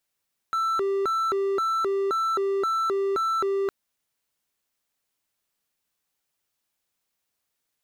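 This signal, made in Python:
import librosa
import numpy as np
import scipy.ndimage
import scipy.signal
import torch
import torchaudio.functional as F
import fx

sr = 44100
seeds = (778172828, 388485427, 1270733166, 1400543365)

y = fx.siren(sr, length_s=3.16, kind='hi-lo', low_hz=393.0, high_hz=1330.0, per_s=1.9, wave='triangle', level_db=-20.0)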